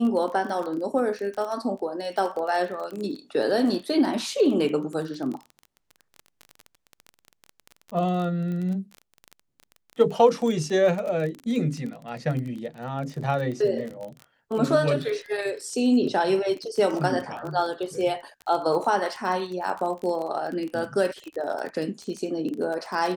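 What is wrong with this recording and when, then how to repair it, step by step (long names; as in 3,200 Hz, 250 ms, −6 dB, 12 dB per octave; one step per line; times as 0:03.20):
surface crackle 23 per second −30 dBFS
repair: click removal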